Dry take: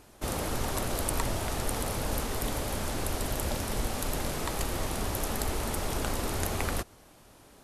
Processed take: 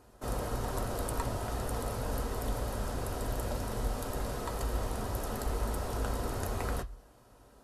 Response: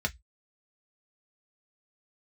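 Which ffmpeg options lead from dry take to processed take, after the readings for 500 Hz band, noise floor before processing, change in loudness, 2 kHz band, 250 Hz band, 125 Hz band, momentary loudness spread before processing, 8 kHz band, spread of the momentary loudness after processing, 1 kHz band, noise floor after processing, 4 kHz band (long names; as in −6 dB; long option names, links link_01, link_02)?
−2.0 dB, −56 dBFS, −3.5 dB, −6.5 dB, −4.0 dB, −1.5 dB, 2 LU, −9.0 dB, 2 LU, −3.0 dB, −59 dBFS, −9.0 dB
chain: -filter_complex "[0:a]asplit=2[link_01][link_02];[1:a]atrim=start_sample=2205,asetrate=32634,aresample=44100[link_03];[link_02][link_03]afir=irnorm=-1:irlink=0,volume=-10dB[link_04];[link_01][link_04]amix=inputs=2:normalize=0,volume=-6.5dB"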